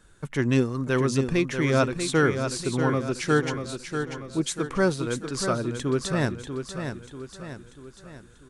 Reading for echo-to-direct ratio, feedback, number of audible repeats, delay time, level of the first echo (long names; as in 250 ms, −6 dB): −6.5 dB, 48%, 5, 640 ms, −7.5 dB